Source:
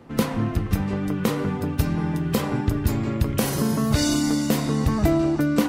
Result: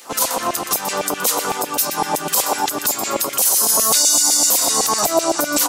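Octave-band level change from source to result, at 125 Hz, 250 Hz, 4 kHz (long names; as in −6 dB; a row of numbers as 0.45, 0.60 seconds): −18.0, −8.0, +12.5 decibels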